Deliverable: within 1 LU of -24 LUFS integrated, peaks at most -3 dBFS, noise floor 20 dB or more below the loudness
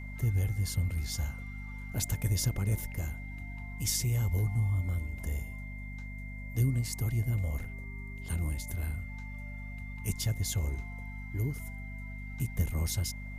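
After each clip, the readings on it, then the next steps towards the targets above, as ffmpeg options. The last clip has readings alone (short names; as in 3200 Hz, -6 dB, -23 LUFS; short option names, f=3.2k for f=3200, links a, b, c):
hum 50 Hz; harmonics up to 250 Hz; hum level -39 dBFS; steady tone 2100 Hz; tone level -47 dBFS; loudness -34.0 LUFS; peak -15.5 dBFS; loudness target -24.0 LUFS
-> -af "bandreject=f=50:t=h:w=4,bandreject=f=100:t=h:w=4,bandreject=f=150:t=h:w=4,bandreject=f=200:t=h:w=4,bandreject=f=250:t=h:w=4"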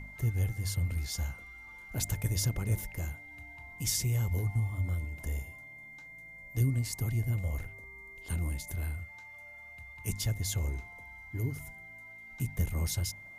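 hum none; steady tone 2100 Hz; tone level -47 dBFS
-> -af "bandreject=f=2.1k:w=30"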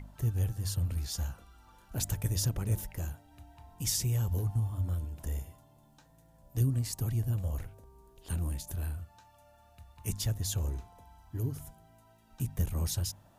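steady tone none; loudness -34.0 LUFS; peak -16.0 dBFS; loudness target -24.0 LUFS
-> -af "volume=10dB"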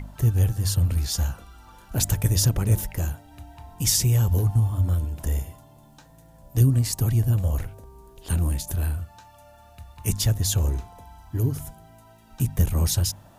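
loudness -24.0 LUFS; peak -6.0 dBFS; noise floor -52 dBFS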